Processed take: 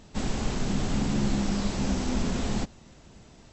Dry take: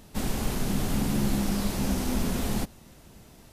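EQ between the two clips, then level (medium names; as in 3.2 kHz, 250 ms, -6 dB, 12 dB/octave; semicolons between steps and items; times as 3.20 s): brick-wall FIR low-pass 8 kHz; 0.0 dB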